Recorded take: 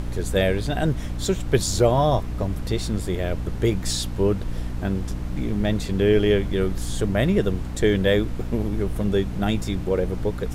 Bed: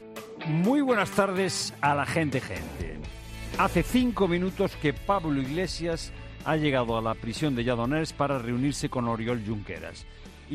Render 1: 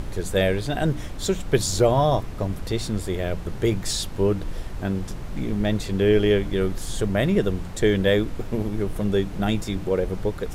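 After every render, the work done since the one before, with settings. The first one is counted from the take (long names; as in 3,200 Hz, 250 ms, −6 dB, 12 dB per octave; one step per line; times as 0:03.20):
hum removal 60 Hz, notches 5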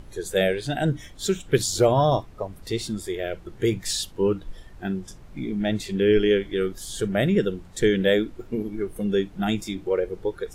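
noise reduction from a noise print 13 dB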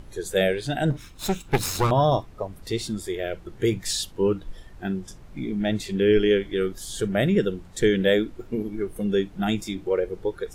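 0:00.90–0:01.91: lower of the sound and its delayed copy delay 0.77 ms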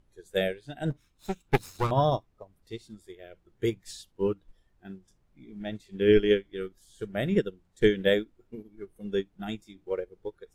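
expander for the loud parts 2.5 to 1, over −31 dBFS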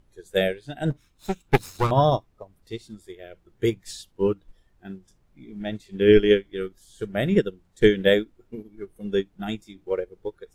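level +5 dB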